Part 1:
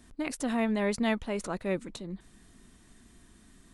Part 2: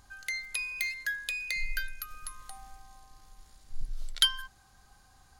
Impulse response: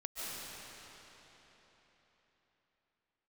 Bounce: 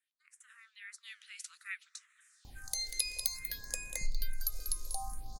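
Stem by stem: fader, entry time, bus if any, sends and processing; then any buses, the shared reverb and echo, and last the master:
0.96 s -17.5 dB -> 1.66 s -6.5 dB, 0.00 s, send -23 dB, no echo send, steep high-pass 1300 Hz 72 dB/oct; flange 1.2 Hz, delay 2.9 ms, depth 8.4 ms, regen +80%
-4.0 dB, 2.45 s, no send, echo send -10.5 dB, band shelf 2000 Hz -14.5 dB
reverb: on, RT60 4.1 s, pre-delay 0.105 s
echo: feedback echo 0.191 s, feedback 28%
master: AGC gain up to 12 dB; phaser stages 4, 0.58 Hz, lowest notch 150–4500 Hz; compressor 3:1, threshold -28 dBFS, peak gain reduction 9.5 dB

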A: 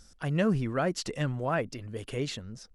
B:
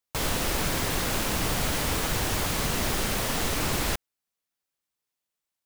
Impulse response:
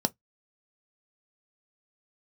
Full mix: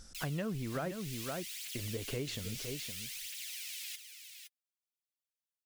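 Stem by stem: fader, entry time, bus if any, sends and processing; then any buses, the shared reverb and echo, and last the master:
+1.5 dB, 0.00 s, muted 0.96–1.75, no send, echo send -11 dB, dry
-14.0 dB, 0.00 s, no send, echo send -8 dB, steep high-pass 2200 Hz 36 dB/oct; phaser 0.6 Hz, delay 3.8 ms, feedback 59%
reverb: off
echo: echo 0.514 s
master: compressor 5:1, threshold -35 dBFS, peak gain reduction 13.5 dB

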